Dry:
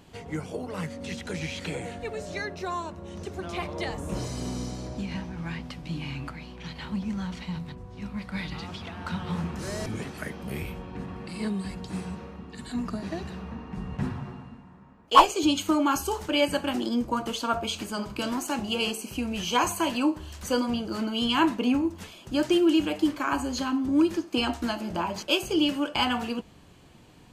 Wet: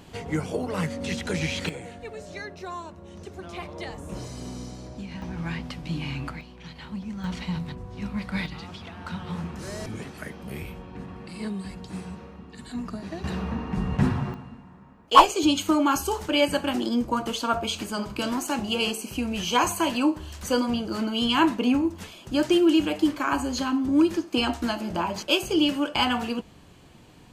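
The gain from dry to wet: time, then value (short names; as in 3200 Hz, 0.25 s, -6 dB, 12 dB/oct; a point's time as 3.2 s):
+5.5 dB
from 1.69 s -4 dB
from 5.22 s +3 dB
from 6.41 s -3.5 dB
from 7.24 s +4 dB
from 8.46 s -2 dB
from 13.24 s +8 dB
from 14.34 s +2 dB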